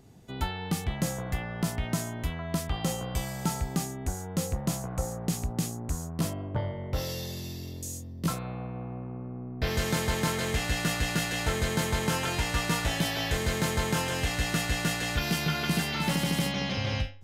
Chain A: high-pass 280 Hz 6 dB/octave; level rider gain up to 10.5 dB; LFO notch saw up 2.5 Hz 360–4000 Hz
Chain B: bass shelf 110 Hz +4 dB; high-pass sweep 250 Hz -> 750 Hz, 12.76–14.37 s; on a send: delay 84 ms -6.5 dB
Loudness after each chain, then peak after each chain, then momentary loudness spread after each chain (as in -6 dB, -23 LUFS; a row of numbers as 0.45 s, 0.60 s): -23.0 LUFS, -29.5 LUFS; -6.5 dBFS, -12.5 dBFS; 9 LU, 8 LU